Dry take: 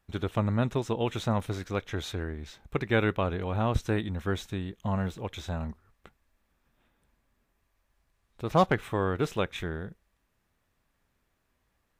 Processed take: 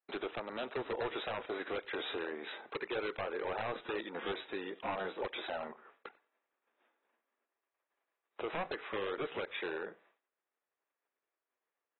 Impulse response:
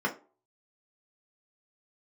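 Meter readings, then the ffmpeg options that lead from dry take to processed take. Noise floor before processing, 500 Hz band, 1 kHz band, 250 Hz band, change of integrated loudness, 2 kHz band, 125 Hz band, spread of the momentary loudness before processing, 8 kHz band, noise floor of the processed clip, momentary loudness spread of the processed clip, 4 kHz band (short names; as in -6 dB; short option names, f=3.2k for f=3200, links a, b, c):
-76 dBFS, -6.5 dB, -8.0 dB, -13.5 dB, -9.0 dB, -4.5 dB, -26.0 dB, 10 LU, under -30 dB, under -85 dBFS, 6 LU, -3.5 dB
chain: -af "lowpass=2.7k,agate=range=-33dB:threshold=-59dB:ratio=3:detection=peak,highpass=f=380:w=0.5412,highpass=f=380:w=1.3066,alimiter=limit=-21dB:level=0:latency=1:release=314,acompressor=threshold=-52dB:ratio=2,aeval=exprs='0.0299*sin(PI/2*3.16*val(0)/0.0299)':c=same,aecho=1:1:94|188:0.0708|0.0106,volume=-2dB" -ar 24000 -c:a aac -b:a 16k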